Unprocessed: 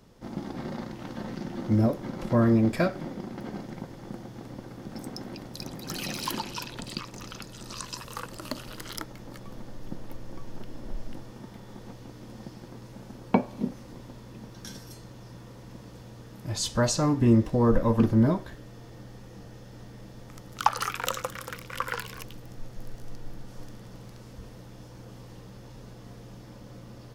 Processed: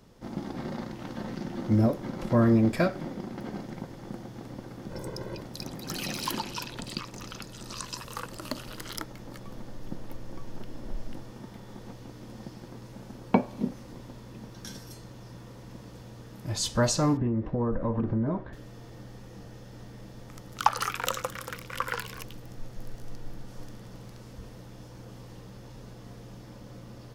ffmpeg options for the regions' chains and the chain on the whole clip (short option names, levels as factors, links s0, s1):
-filter_complex "[0:a]asettb=1/sr,asplit=3[s0][s1][s2];[s0]atrim=end=4.904[s3];[s1]atrim=start=4.9:end=5.41,asetpts=PTS-STARTPTS,afade=t=in:d=0.004:c=qsin,afade=t=out:st=0.506:d=0.004:c=qsin,tiltshelf=f=1300:g=3,aecho=1:1:2:0.82,atrim=end_sample=22491[s4];[s2]atrim=start=5.406[s5];[s3][s4]acrossfade=d=0.004:c1=hsin:c2=qsin[s6];[s6][s5]acrossfade=d=0.004:c1=qsin:c2=hsin,asettb=1/sr,asplit=3[s7][s8][s9];[s7]atrim=end=17.174[s10];[s8]atrim=start=17.17:end=18.53,asetpts=PTS-STARTPTS,afade=t=in:d=0.004:c=qsin,afade=t=out:st=1.356:d=0.004:c=qsin,lowpass=1700,acompressor=threshold=0.0708:ratio=12:attack=3.2:release=140:knee=1:detection=peak[s11];[s9]atrim=start=18.526[s12];[s10][s11]acrossfade=d=0.004:c1=hsin:c2=qsin[s13];[s13][s12]acrossfade=d=0.004:c1=qsin:c2=hsin"